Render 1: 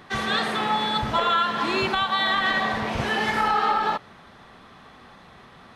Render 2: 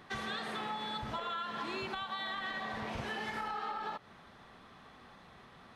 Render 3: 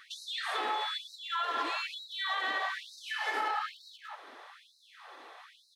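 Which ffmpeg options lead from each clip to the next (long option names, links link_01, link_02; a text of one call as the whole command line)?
ffmpeg -i in.wav -af "acompressor=threshold=-28dB:ratio=6,volume=-8dB" out.wav
ffmpeg -i in.wav -filter_complex "[0:a]asplit=2[link_01][link_02];[link_02]adelay=180,highpass=300,lowpass=3400,asoftclip=type=hard:threshold=-34.5dB,volume=-7dB[link_03];[link_01][link_03]amix=inputs=2:normalize=0,afftfilt=real='re*gte(b*sr/1024,250*pow(3800/250,0.5+0.5*sin(2*PI*1.1*pts/sr)))':imag='im*gte(b*sr/1024,250*pow(3800/250,0.5+0.5*sin(2*PI*1.1*pts/sr)))':win_size=1024:overlap=0.75,volume=6dB" out.wav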